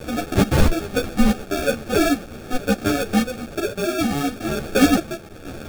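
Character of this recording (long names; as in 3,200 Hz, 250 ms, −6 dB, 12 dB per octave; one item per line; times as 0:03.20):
a quantiser's noise floor 6 bits, dither triangular
sample-and-hold tremolo
aliases and images of a low sample rate 1,000 Hz, jitter 0%
a shimmering, thickened sound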